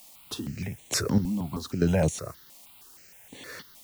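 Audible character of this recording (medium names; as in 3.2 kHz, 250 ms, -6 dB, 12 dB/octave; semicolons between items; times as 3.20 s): chopped level 1.1 Hz, depth 65%, duty 30%; a quantiser's noise floor 10-bit, dither triangular; notches that jump at a steady rate 6.4 Hz 410–5000 Hz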